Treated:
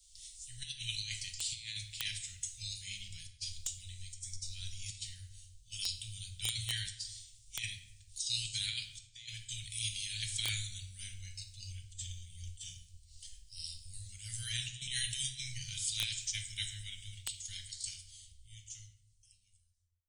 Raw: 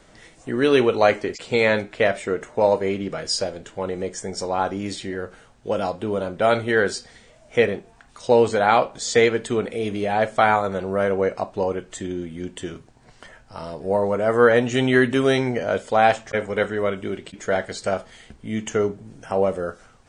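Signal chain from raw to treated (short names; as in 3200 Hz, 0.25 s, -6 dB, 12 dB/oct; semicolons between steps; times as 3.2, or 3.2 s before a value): ending faded out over 3.25 s; inverse Chebyshev band-stop 250–1200 Hz, stop band 60 dB; pre-emphasis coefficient 0.8; negative-ratio compressor -47 dBFS, ratio -0.5; shoebox room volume 570 m³, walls mixed, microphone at 0.82 m; wrapped overs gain 28.5 dB; three-band expander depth 70%; gain +5.5 dB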